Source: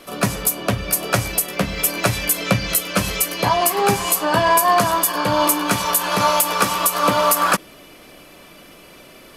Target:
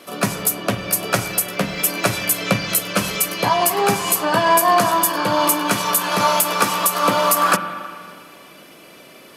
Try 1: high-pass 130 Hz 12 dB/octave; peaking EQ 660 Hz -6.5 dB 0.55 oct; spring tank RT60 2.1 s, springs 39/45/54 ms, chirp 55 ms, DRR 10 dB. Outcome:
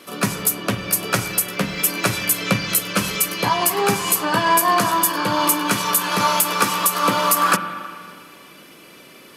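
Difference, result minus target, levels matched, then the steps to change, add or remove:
500 Hz band -3.0 dB
remove: peaking EQ 660 Hz -6.5 dB 0.55 oct

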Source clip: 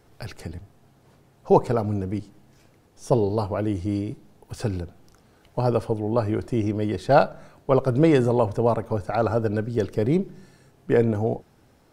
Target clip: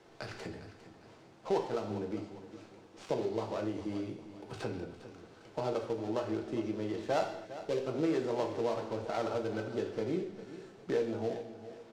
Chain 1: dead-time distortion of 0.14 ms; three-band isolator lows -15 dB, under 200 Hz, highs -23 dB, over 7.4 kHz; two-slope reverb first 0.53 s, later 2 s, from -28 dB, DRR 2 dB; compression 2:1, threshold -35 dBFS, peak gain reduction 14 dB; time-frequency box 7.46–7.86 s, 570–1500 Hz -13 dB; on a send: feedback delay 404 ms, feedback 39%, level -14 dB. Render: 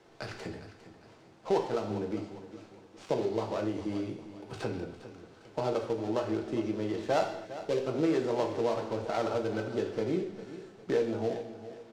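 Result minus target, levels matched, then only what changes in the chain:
compression: peak gain reduction -3.5 dB
change: compression 2:1, threshold -41.5 dBFS, peak gain reduction 17 dB

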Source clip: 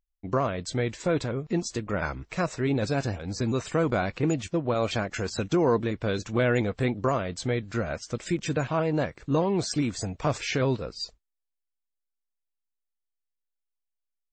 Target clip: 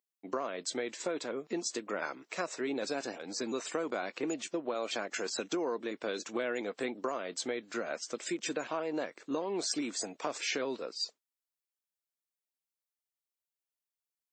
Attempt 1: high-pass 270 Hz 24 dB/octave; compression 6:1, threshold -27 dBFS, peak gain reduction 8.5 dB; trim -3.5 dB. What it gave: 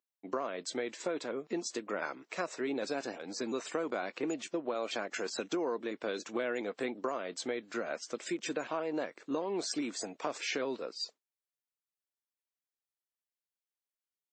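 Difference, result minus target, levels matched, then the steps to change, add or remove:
8 kHz band -3.5 dB
add after compression: treble shelf 5 kHz +6 dB

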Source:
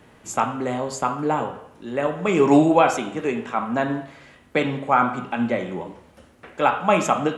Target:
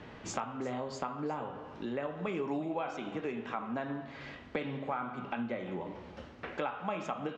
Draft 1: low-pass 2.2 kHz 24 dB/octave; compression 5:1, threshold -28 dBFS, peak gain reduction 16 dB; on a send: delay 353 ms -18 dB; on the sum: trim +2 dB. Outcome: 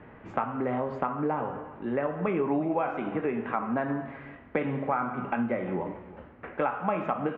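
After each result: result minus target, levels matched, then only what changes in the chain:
4 kHz band -14.0 dB; compression: peak gain reduction -7.5 dB
change: low-pass 5.3 kHz 24 dB/octave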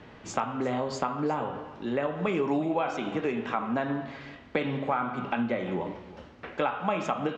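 compression: peak gain reduction -7.5 dB
change: compression 5:1, threshold -37.5 dBFS, peak gain reduction 24 dB

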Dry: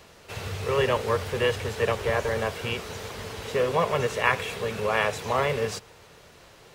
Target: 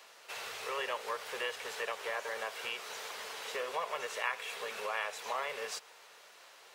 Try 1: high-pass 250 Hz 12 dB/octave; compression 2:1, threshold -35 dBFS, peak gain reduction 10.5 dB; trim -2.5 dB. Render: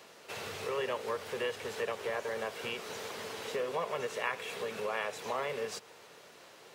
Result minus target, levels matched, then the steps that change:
250 Hz band +10.5 dB
change: high-pass 740 Hz 12 dB/octave

